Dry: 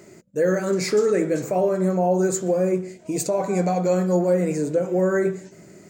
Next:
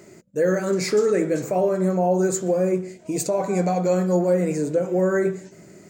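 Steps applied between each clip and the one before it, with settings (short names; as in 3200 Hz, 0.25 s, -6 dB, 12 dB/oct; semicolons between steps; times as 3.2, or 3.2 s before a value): nothing audible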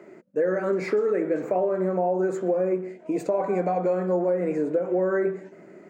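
three-band isolator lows -22 dB, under 210 Hz, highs -23 dB, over 2400 Hz; compressor, threshold -22 dBFS, peak gain reduction 7 dB; gain +2 dB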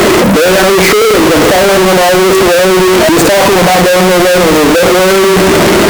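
power-law curve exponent 0.35; fuzz box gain 46 dB, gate -43 dBFS; gain +7.5 dB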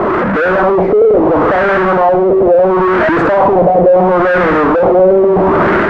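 AGC; LFO low-pass sine 0.73 Hz 580–1600 Hz; gain -8 dB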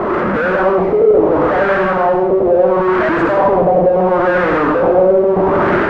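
reverb RT60 0.40 s, pre-delay 82 ms, DRR 4 dB; gain -4.5 dB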